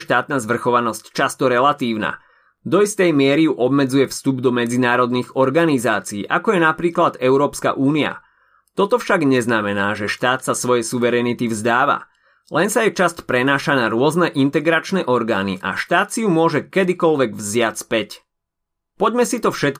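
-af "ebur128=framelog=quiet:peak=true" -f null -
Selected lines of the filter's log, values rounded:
Integrated loudness:
  I:         -17.7 LUFS
  Threshold: -28.0 LUFS
Loudness range:
  LRA:         1.9 LU
  Threshold: -37.9 LUFS
  LRA low:   -19.0 LUFS
  LRA high:  -17.1 LUFS
True peak:
  Peak:       -2.6 dBFS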